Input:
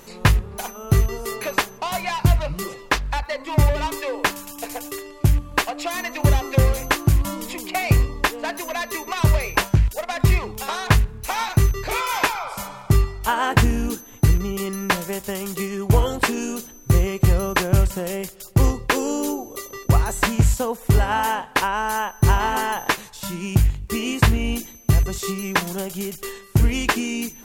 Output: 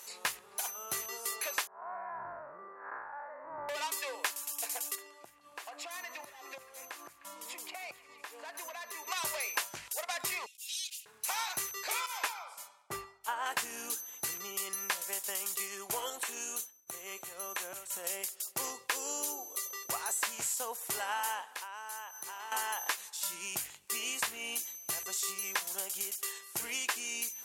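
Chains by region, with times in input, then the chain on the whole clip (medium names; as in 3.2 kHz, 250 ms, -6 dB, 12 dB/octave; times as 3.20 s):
1.67–3.69 s: spectral blur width 184 ms + elliptic low-pass 1.6 kHz, stop band 50 dB
4.95–9.07 s: treble shelf 2.5 kHz -9.5 dB + compression 12:1, threshold -30 dBFS + repeats whose band climbs or falls 153 ms, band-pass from 1.3 kHz, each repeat 0.7 oct, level -11.5 dB
10.46–11.06 s: elliptic high-pass 2.7 kHz, stop band 60 dB + comb 3.6 ms, depth 79% + slow attack 224 ms
12.06–13.46 s: treble shelf 2.1 kHz -10.5 dB + three bands expanded up and down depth 100%
16.10–18.04 s: expander -34 dBFS + compression 4:1, threshold -25 dBFS + band-stop 4.9 kHz, Q 6.5
21.55–22.52 s: high-pass 160 Hz + compression 3:1, threshold -36 dBFS
whole clip: high-pass 730 Hz 12 dB/octave; peaking EQ 9.8 kHz +10.5 dB 1.9 oct; compression 2.5:1, threshold -25 dBFS; trim -8 dB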